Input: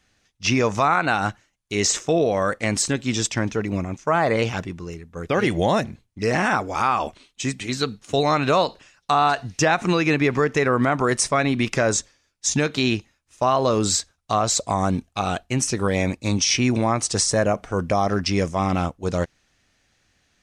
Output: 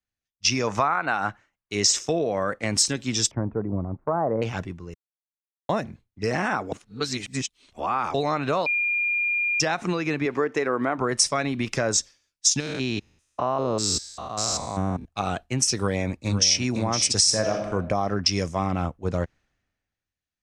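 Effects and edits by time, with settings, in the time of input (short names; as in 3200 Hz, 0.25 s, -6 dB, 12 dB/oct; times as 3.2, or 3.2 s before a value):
0.67–1.73 bell 1300 Hz +6.5 dB 2.3 oct
3.31–4.42 LPF 1100 Hz 24 dB/oct
4.94–5.69 mute
6.72–8.14 reverse
8.66–9.6 bleep 2410 Hz -15 dBFS
10.25–10.98 resonant low shelf 230 Hz -6.5 dB, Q 1.5
12.6–15.05 stepped spectrum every 0.2 s
15.75–16.6 echo throw 0.51 s, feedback 25%, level -6.5 dB
17.19–17.7 reverb throw, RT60 0.96 s, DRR 3.5 dB
whole clip: dynamic EQ 5300 Hz, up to +7 dB, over -41 dBFS, Q 4.3; compressor, threshold -21 dBFS; three-band expander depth 70%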